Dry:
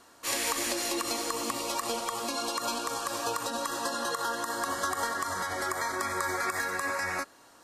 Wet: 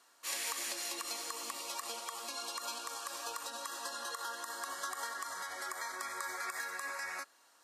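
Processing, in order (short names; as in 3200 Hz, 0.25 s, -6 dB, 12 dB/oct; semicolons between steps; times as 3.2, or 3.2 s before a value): HPF 1200 Hz 6 dB/oct; gain -6.5 dB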